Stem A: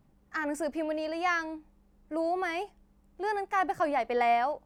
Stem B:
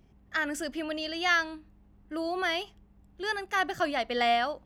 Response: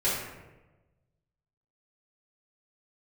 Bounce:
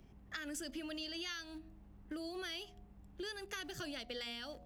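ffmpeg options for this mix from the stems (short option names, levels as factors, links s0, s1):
-filter_complex "[0:a]aeval=exprs='val(0)*gte(abs(val(0)),0.00891)':c=same,volume=0.141[s0];[1:a]bandreject=f=80.13:t=h:w=4,bandreject=f=160.26:t=h:w=4,bandreject=f=240.39:t=h:w=4,bandreject=f=320.52:t=h:w=4,bandreject=f=400.65:t=h:w=4,bandreject=f=480.78:t=h:w=4,bandreject=f=560.91:t=h:w=4,bandreject=f=641.04:t=h:w=4,bandreject=f=721.17:t=h:w=4,acrossover=split=220|3000[s1][s2][s3];[s2]acompressor=threshold=0.00708:ratio=6[s4];[s1][s4][s3]amix=inputs=3:normalize=0,volume=1.06[s5];[s0][s5]amix=inputs=2:normalize=0,acompressor=threshold=0.00891:ratio=4"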